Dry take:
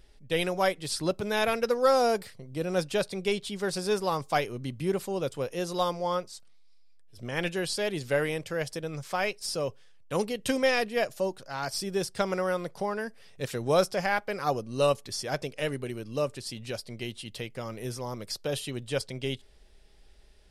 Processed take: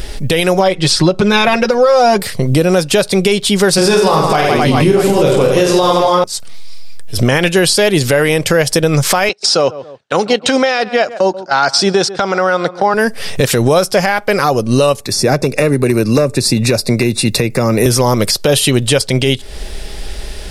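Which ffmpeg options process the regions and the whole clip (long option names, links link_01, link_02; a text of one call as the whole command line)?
ffmpeg -i in.wav -filter_complex "[0:a]asettb=1/sr,asplit=3[link_01][link_02][link_03];[link_01]atrim=end=0.594[link_04];[link_02]atrim=start=0.59:end=2.2,asetpts=PTS-STARTPTS,afade=type=in:duration=0.004:curve=qsin,afade=type=out:start_time=1.606:duration=0.004:curve=qsin,lowpass=5500,aecho=1:1:5.5:0.79,atrim=end_sample=71001,acompressor=threshold=-22dB:ratio=3:attack=3.2:release=140:knee=1:detection=peak[link_05];[link_03]atrim=start=2.196[link_06];[link_04][link_05]acrossfade=duration=0.004:curve1=hsin:curve2=qsin[link_07];[link_07][link_06]acrossfade=duration=0.004:curve1=qsin:curve2=hsin,asettb=1/sr,asplit=3[link_08][link_09][link_10];[link_08]atrim=end=3.764[link_11];[link_09]atrim=start=3.76:end=6.24,asetpts=PTS-STARTPTS,afade=type=in:duration=0.004:curve=qsin,afade=type=out:start_time=2.476:duration=0.004:curve=qsin,highshelf=frequency=10000:gain=-11,aecho=1:1:20|50|95|162.5|263.8|415.6|643.4:0.794|0.631|0.501|0.398|0.316|0.251|0.2,atrim=end_sample=109368[link_12];[link_10]atrim=start=6.236[link_13];[link_11][link_12]acrossfade=duration=0.004:curve1=hsin:curve2=qsin[link_14];[link_14][link_13]acrossfade=duration=0.004:curve1=qsin:curve2=hsin,asettb=1/sr,asplit=3[link_15][link_16][link_17];[link_15]atrim=end=9.294[link_18];[link_16]atrim=start=9.29:end=12.94,asetpts=PTS-STARTPTS,afade=type=in:duration=0.004:curve=qsin,afade=type=out:start_time=3.646:duration=0.004:curve=qsin,agate=range=-19dB:threshold=-38dB:ratio=16:release=100:detection=peak,highpass=190,equalizer=frequency=780:width_type=q:width=4:gain=7,equalizer=frequency=1400:width_type=q:width=4:gain=8,equalizer=frequency=3900:width_type=q:width=4:gain=6,lowpass=frequency=7100:width=0.5412,lowpass=frequency=7100:width=1.3066,asplit=2[link_19][link_20];[link_20]adelay=136,lowpass=frequency=1600:poles=1,volume=-21dB,asplit=2[link_21][link_22];[link_22]adelay=136,lowpass=frequency=1600:poles=1,volume=0.22[link_23];[link_19][link_21][link_23]amix=inputs=3:normalize=0,atrim=end_sample=160965[link_24];[link_17]atrim=start=12.936[link_25];[link_18][link_24]acrossfade=duration=0.004:curve1=hsin:curve2=qsin[link_26];[link_26][link_25]acrossfade=duration=0.004:curve1=qsin:curve2=hsin,asettb=1/sr,asplit=3[link_27][link_28][link_29];[link_27]atrim=end=15.004[link_30];[link_28]atrim=start=15:end=17.86,asetpts=PTS-STARTPTS,afade=type=in:duration=0.004:curve=qsin,afade=type=out:start_time=2.856:duration=0.004:curve=qsin,acrossover=split=98|500[link_31][link_32][link_33];[link_31]acompressor=threshold=-60dB:ratio=4[link_34];[link_32]acompressor=threshold=-36dB:ratio=4[link_35];[link_33]acompressor=threshold=-45dB:ratio=4[link_36];[link_34][link_35][link_36]amix=inputs=3:normalize=0,asoftclip=type=hard:threshold=-31dB,asuperstop=centerf=3100:order=12:qfactor=4.8[link_37];[link_29]atrim=start=17.856[link_38];[link_30][link_37]acrossfade=duration=0.004:curve1=hsin:curve2=qsin[link_39];[link_39][link_38]acrossfade=duration=0.004:curve1=qsin:curve2=hsin,highshelf=frequency=6800:gain=4,acompressor=threshold=-41dB:ratio=6,alimiter=level_in=34dB:limit=-1dB:release=50:level=0:latency=1,volume=-1dB" out.wav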